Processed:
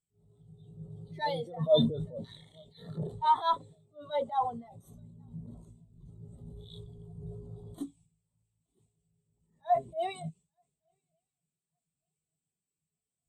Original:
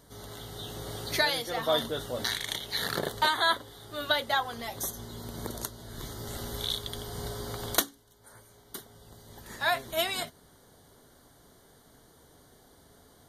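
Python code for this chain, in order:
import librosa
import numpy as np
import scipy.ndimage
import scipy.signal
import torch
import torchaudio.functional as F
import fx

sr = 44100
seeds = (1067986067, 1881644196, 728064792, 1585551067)

p1 = fx.diode_clip(x, sr, knee_db=-18.5)
p2 = fx.dmg_noise_band(p1, sr, seeds[0], low_hz=2200.0, high_hz=10000.0, level_db=-50.0)
p3 = fx.sample_hold(p2, sr, seeds[1], rate_hz=7600.0, jitter_pct=0)
p4 = p2 + (p3 * 10.0 ** (-4.5 / 20.0))
p5 = fx.echo_swing(p4, sr, ms=1171, ratio=3, feedback_pct=35, wet_db=-19.5)
p6 = fx.transient(p5, sr, attack_db=-10, sustain_db=7)
p7 = fx.graphic_eq_31(p6, sr, hz=(160, 1600, 8000), db=(10, -9, 8))
p8 = fx.spectral_expand(p7, sr, expansion=2.5)
y = p8 * 10.0 ** (-3.5 / 20.0)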